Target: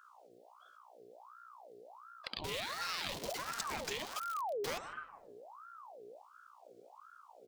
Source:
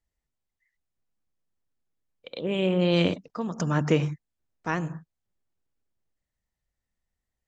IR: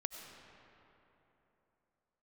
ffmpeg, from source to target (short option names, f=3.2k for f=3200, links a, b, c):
-filter_complex "[0:a]asettb=1/sr,asplit=3[a][b][c];[a]atrim=end=2.444[d];[b]atrim=start=2.44:end=4.78,asetpts=PTS-STARTPTS,afade=t=in:d=0.004:c=qsin,afade=t=out:st=2.336:d=0.004:c=qsin,aeval=exprs='val(0)+0.5*0.0355*sgn(val(0))':c=same[e];[c]atrim=start=4.776[f];[d][e]acrossfade=d=0.004:c1=hsin:c2=qsin[g];[g][f]acrossfade=d=0.004:c1=qsin:c2=hsin,equalizer=f=125:t=o:w=1:g=7,equalizer=f=250:t=o:w=1:g=-5,equalizer=f=500:t=o:w=1:g=-7,equalizer=f=1k:t=o:w=1:g=-11,equalizer=f=2k:t=o:w=1:g=-4,equalizer=f=4k:t=o:w=1:g=5,afftfilt=real='re*lt(hypot(re,im),0.141)':imag='im*lt(hypot(re,im),0.141)':win_size=1024:overlap=0.75,bandreject=f=96.83:t=h:w=4,bandreject=f=193.66:t=h:w=4,bandreject=f=290.49:t=h:w=4,bandreject=f=387.32:t=h:w=4,bandreject=f=484.15:t=h:w=4,bandreject=f=580.98:t=h:w=4,bandreject=f=677.81:t=h:w=4,bandreject=f=774.64:t=h:w=4,bandreject=f=871.47:t=h:w=4,bandreject=f=968.3:t=h:w=4,bandreject=f=1.06513k:t=h:w=4,bandreject=f=1.16196k:t=h:w=4,bandreject=f=1.25879k:t=h:w=4,bandreject=f=1.35562k:t=h:w=4,bandreject=f=1.45245k:t=h:w=4,bandreject=f=1.54928k:t=h:w=4,asubboost=boost=3.5:cutoff=75,asplit=2[h][i];[i]adelay=154,lowpass=f=990:p=1,volume=-17dB,asplit=2[j][k];[k]adelay=154,lowpass=f=990:p=1,volume=0.3,asplit=2[l][m];[m]adelay=154,lowpass=f=990:p=1,volume=0.3[n];[h][j][l][n]amix=inputs=4:normalize=0,acompressor=threshold=-53dB:ratio=3,asoftclip=type=tanh:threshold=-33dB,aeval=exprs='val(0)+0.000282*(sin(2*PI*60*n/s)+sin(2*PI*2*60*n/s)/2+sin(2*PI*3*60*n/s)/3+sin(2*PI*4*60*n/s)/4+sin(2*PI*5*60*n/s)/5)':c=same,aeval=exprs='val(0)*sin(2*PI*900*n/s+900*0.55/1.4*sin(2*PI*1.4*n/s))':c=same,volume=13.5dB"